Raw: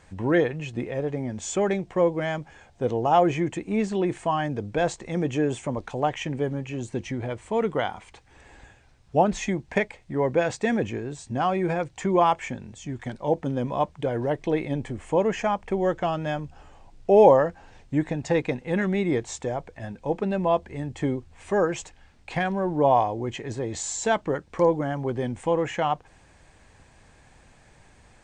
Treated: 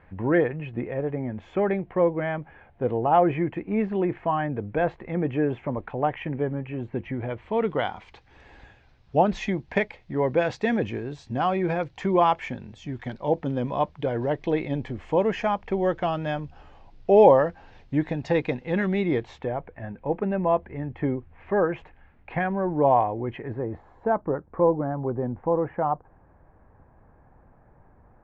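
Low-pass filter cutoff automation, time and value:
low-pass filter 24 dB per octave
0:07.08 2,400 Hz
0:07.91 4,800 Hz
0:19.06 4,800 Hz
0:19.65 2,300 Hz
0:23.35 2,300 Hz
0:23.80 1,300 Hz

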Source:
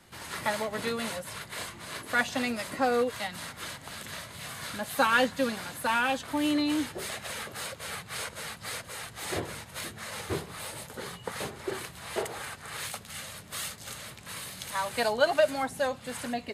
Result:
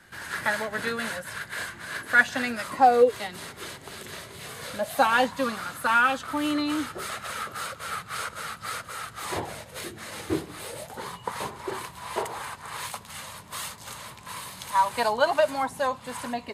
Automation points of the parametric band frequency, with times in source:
parametric band +13.5 dB 0.37 octaves
0:02.57 1,600 Hz
0:03.13 390 Hz
0:04.43 390 Hz
0:05.60 1,300 Hz
0:09.19 1,300 Hz
0:09.98 310 Hz
0:10.55 310 Hz
0:11.02 990 Hz

